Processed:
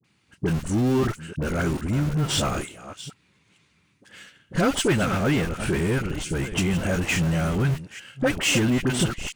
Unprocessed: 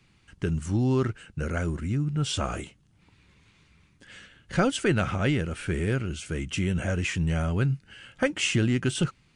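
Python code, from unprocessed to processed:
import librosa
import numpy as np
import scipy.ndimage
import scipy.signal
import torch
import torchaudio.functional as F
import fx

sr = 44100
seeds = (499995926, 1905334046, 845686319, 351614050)

p1 = fx.reverse_delay(x, sr, ms=442, wet_db=-12.5)
p2 = scipy.signal.sosfilt(scipy.signal.butter(2, 130.0, 'highpass', fs=sr, output='sos'), p1)
p3 = fx.high_shelf(p2, sr, hz=9100.0, db=6.5)
p4 = fx.leveller(p3, sr, passes=1)
p5 = fx.schmitt(p4, sr, flips_db=-24.5)
p6 = p4 + (p5 * 10.0 ** (-5.0 / 20.0))
p7 = fx.dispersion(p6, sr, late='highs', ms=45.0, hz=920.0)
y = 10.0 ** (-13.0 / 20.0) * np.tanh(p7 / 10.0 ** (-13.0 / 20.0))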